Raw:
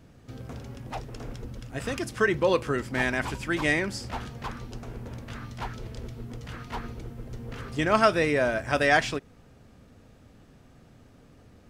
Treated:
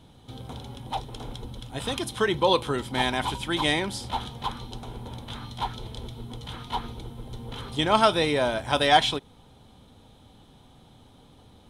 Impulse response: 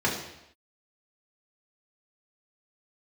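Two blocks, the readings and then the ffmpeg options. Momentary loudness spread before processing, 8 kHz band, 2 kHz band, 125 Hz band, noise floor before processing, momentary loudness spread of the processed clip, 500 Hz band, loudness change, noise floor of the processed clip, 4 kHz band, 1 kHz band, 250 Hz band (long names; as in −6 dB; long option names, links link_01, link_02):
19 LU, +2.5 dB, −3.0 dB, 0.0 dB, −55 dBFS, 19 LU, 0.0 dB, +1.5 dB, −54 dBFS, +10.0 dB, +4.5 dB, 0.0 dB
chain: -af "superequalizer=9b=2.51:11b=0.631:13b=3.98:16b=2.24"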